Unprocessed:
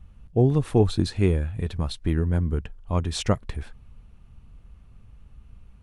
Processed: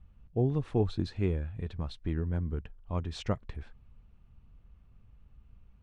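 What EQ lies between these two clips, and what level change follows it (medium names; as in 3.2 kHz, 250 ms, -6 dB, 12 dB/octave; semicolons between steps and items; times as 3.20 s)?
distance through air 110 m; -8.5 dB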